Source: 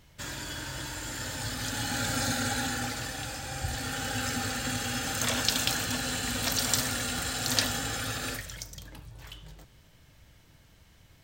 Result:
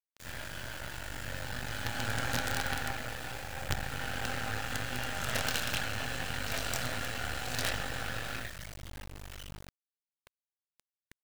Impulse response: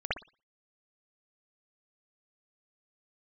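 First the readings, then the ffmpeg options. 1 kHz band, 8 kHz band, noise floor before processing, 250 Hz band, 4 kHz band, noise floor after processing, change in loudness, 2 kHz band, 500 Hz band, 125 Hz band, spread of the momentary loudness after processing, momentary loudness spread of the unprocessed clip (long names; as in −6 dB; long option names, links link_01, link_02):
−2.5 dB, −10.5 dB, −58 dBFS, −8.0 dB, −7.0 dB, below −85 dBFS, −5.5 dB, −1.5 dB, −2.0 dB, −3.0 dB, 13 LU, 14 LU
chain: -filter_complex "[0:a]flanger=delay=22.5:depth=4.3:speed=0.77[link_01];[1:a]atrim=start_sample=2205[link_02];[link_01][link_02]afir=irnorm=-1:irlink=0,acrusher=bits=4:dc=4:mix=0:aa=0.000001,volume=-3.5dB"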